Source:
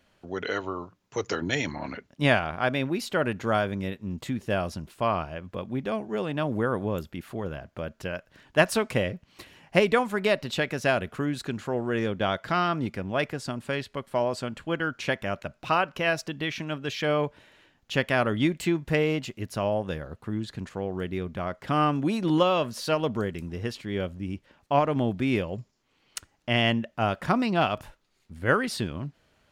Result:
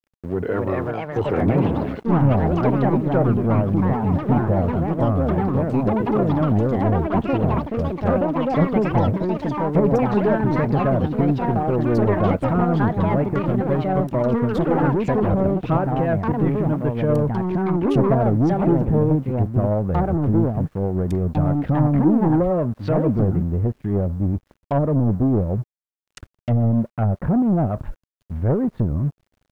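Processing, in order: rotary cabinet horn 1.2 Hz, later 8 Hz, at 8.06 s; RIAA curve playback; low-pass that closes with the level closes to 570 Hz, closed at -16 dBFS; bass shelf 330 Hz -3.5 dB; waveshaping leveller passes 3; low-pass that closes with the level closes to 1.2 kHz, closed at -17.5 dBFS; bit crusher 10-bit; ever faster or slower copies 333 ms, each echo +4 st, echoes 3; trim -3.5 dB

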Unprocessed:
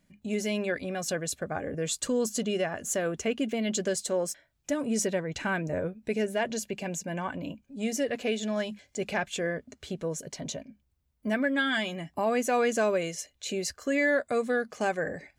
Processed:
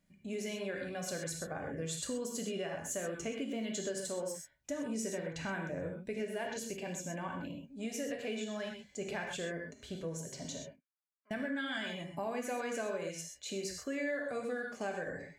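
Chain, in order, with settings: 10.66–11.31 s: ladder band-pass 1.4 kHz, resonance 60%; gated-style reverb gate 150 ms flat, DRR 1.5 dB; compression 3:1, threshold -27 dBFS, peak gain reduction 8 dB; trim -8 dB

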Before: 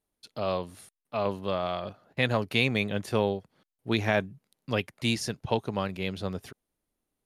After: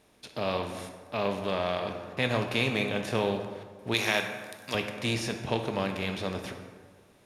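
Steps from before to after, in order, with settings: spectral levelling over time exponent 0.6; 3.94–4.75 s: tilt EQ +3.5 dB/octave; plate-style reverb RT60 1.6 s, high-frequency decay 0.55×, DRR 4.5 dB; trim -5 dB

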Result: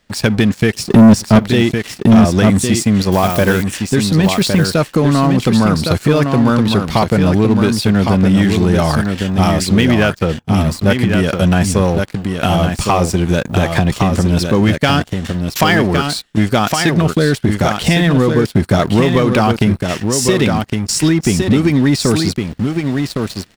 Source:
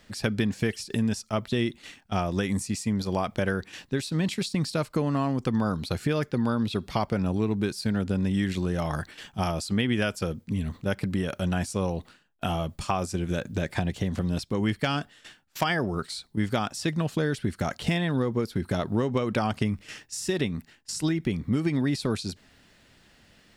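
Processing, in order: 3.12–3.63 s: zero-crossing glitches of -30 dBFS; recorder AGC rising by 5.3 dB/s; 0.74–1.39 s: peaking EQ 180 Hz +14.5 dB 2.9 oct; 9.81–10.56 s: low-pass 3.6 kHz 12 dB/octave; delay 1111 ms -6 dB; waveshaping leveller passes 3; trim +2.5 dB

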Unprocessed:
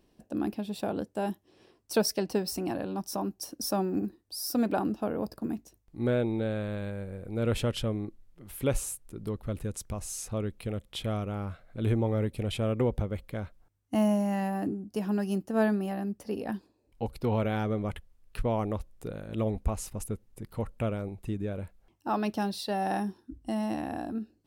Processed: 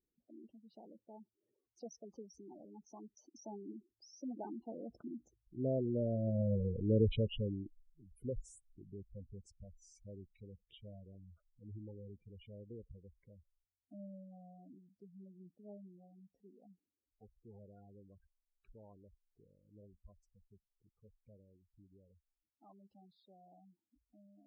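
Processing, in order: Doppler pass-by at 6.59 s, 24 m/s, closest 5.2 m; distance through air 61 m; spectral gate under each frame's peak -10 dB strong; trim +5.5 dB

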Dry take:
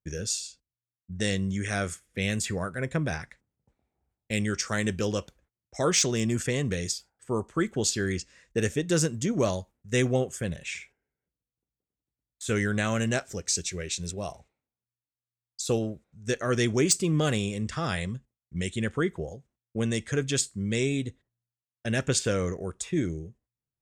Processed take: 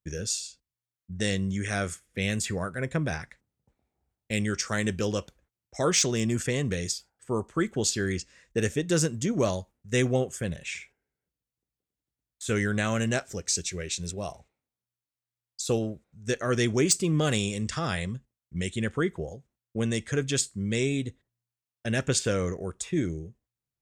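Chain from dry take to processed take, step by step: 17.31–17.79 s: peaking EQ 6.5 kHz +6.5 dB 2.2 oct

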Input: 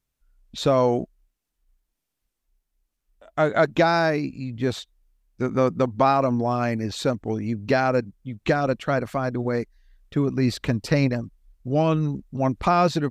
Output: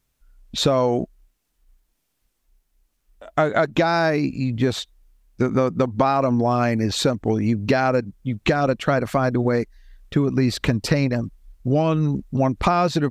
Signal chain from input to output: compression, threshold -24 dBFS, peak gain reduction 10.5 dB; trim +8.5 dB

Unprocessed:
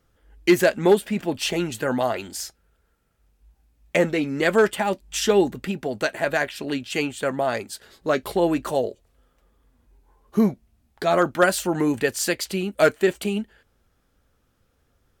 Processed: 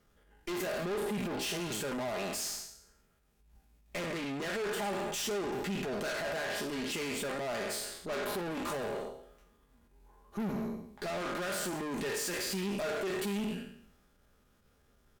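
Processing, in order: spectral sustain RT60 0.69 s; transient shaper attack -8 dB, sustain +3 dB; compression, threshold -22 dBFS, peak gain reduction 10 dB; valve stage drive 34 dB, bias 0.6; hum notches 50/100/150 Hz; comb 4.9 ms, depth 32%

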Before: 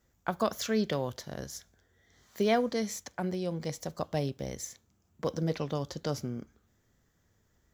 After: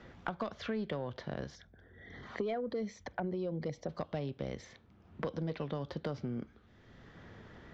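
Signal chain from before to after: 1.55–3.89 s: resonances exaggerated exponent 1.5; low-pass 3.8 kHz 24 dB/octave; compression 3:1, threshold -33 dBFS, peak gain reduction 9 dB; saturation -24.5 dBFS, distortion -22 dB; three bands compressed up and down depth 70%

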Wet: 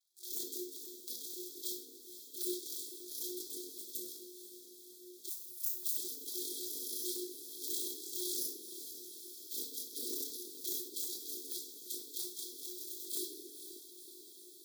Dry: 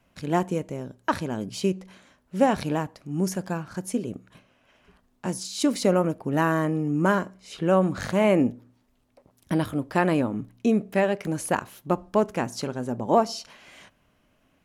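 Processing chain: sorted samples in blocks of 128 samples; spectral gate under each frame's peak -30 dB weak; chorus voices 4, 1.1 Hz, delay 21 ms, depth 3 ms; simulated room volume 1000 m³, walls furnished, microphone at 3.4 m; FFT band-reject 140–3600 Hz; 5.29–5.97 s: differentiator; on a send: echo that smears into a reverb 491 ms, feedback 73%, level -14.5 dB; on the sum: ring modulator 360 Hz; in parallel at +2 dB: compression, threshold -49 dBFS, peak gain reduction 15 dB; on the sum: trim +2 dB

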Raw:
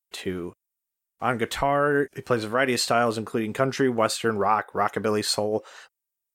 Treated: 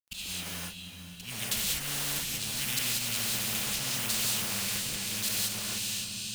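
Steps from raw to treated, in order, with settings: Chebyshev band-stop 200–2700 Hz, order 5; peaking EQ 880 Hz +14.5 dB 1.8 oct; harmonic-percussive split percussive -4 dB; bass shelf 110 Hz +6 dB; in parallel at -0.5 dB: gain riding 2 s; on the sum: slow attack 692 ms; compression 20:1, threshold -32 dBFS, peak gain reduction 10 dB; companded quantiser 6-bit; on a send: echo that smears into a reverb 457 ms, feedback 49%, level -12.5 dB; on the sum: gated-style reverb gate 210 ms rising, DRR -6.5 dB; spectrum-flattening compressor 4:1

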